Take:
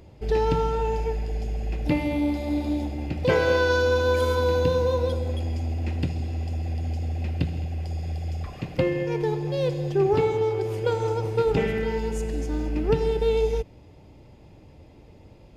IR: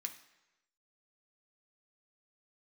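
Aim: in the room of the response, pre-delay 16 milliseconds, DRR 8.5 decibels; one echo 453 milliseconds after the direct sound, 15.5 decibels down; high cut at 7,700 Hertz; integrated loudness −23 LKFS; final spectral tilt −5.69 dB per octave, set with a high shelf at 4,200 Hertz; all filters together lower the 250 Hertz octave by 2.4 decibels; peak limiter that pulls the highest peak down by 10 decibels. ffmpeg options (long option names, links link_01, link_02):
-filter_complex "[0:a]lowpass=7700,equalizer=frequency=250:width_type=o:gain=-3.5,highshelf=frequency=4200:gain=7,alimiter=limit=-19dB:level=0:latency=1,aecho=1:1:453:0.168,asplit=2[link_01][link_02];[1:a]atrim=start_sample=2205,adelay=16[link_03];[link_02][link_03]afir=irnorm=-1:irlink=0,volume=-6dB[link_04];[link_01][link_04]amix=inputs=2:normalize=0,volume=4.5dB"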